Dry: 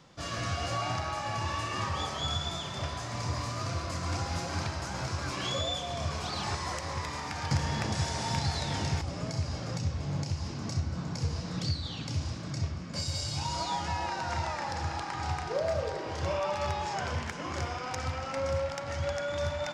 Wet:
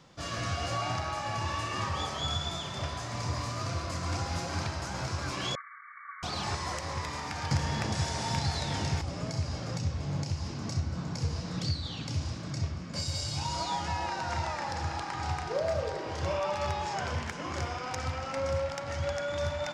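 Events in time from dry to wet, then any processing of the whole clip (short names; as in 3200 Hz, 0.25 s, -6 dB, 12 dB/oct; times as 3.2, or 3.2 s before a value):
5.55–6.23 brick-wall FIR band-pass 1100–2300 Hz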